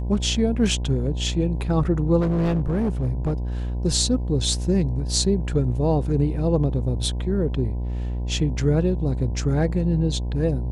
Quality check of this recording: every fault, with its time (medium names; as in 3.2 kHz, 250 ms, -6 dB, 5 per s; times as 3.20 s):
buzz 60 Hz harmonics 17 -26 dBFS
2.20–3.33 s: clipped -18 dBFS